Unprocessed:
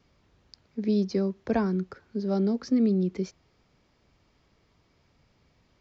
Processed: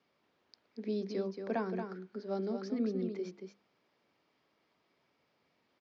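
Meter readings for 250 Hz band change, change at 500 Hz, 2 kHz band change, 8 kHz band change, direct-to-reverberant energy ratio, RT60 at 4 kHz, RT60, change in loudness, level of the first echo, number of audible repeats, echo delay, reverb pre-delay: -11.5 dB, -6.5 dB, -5.5 dB, n/a, none, none, none, -10.0 dB, -7.0 dB, 1, 0.228 s, none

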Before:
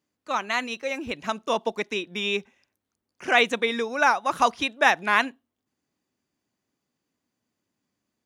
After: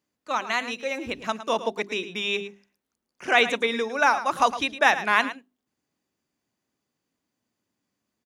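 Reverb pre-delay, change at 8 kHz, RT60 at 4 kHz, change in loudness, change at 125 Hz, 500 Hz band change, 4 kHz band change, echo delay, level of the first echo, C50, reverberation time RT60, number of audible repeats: none, 0.0 dB, none, 0.0 dB, n/a, 0.0 dB, +0.5 dB, 0.109 s, -13.0 dB, none, none, 1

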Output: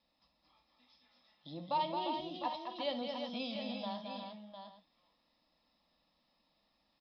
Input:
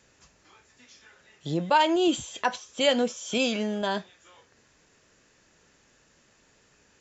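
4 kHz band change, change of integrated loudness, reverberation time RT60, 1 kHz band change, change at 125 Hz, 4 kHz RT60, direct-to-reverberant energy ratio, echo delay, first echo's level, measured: -12.5 dB, -13.5 dB, none, -10.0 dB, -15.0 dB, none, none, 64 ms, -12.0 dB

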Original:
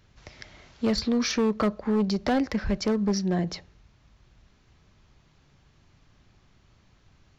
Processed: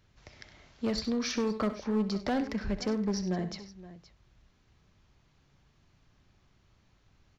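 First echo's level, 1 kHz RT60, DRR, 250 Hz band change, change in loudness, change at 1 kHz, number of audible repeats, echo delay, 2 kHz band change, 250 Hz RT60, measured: -13.0 dB, none, none, -5.5 dB, -6.0 dB, -5.5 dB, 3, 65 ms, -5.5 dB, none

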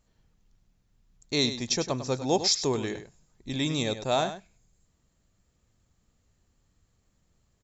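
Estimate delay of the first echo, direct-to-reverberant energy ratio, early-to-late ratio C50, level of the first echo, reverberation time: 0.1 s, none, none, -11.0 dB, none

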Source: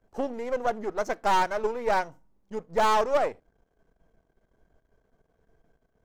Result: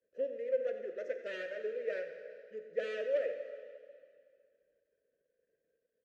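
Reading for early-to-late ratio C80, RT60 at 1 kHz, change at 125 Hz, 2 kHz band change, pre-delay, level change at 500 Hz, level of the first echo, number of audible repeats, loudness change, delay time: 7.5 dB, 2.2 s, under -20 dB, -11.5 dB, 7 ms, -6.5 dB, -14.0 dB, 1, -11.0 dB, 90 ms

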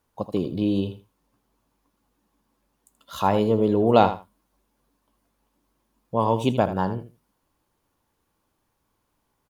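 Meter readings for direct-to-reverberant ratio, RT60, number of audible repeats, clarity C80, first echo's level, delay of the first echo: none, none, 2, none, -12.0 dB, 80 ms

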